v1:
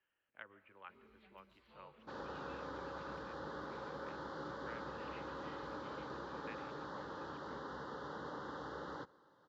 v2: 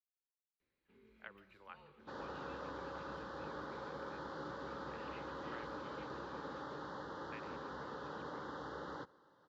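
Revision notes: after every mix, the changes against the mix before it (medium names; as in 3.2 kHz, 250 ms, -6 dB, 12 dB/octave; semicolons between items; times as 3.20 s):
speech: entry +0.85 s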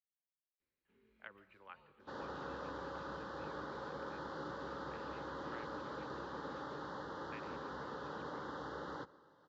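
first sound -6.5 dB; second sound: send +7.5 dB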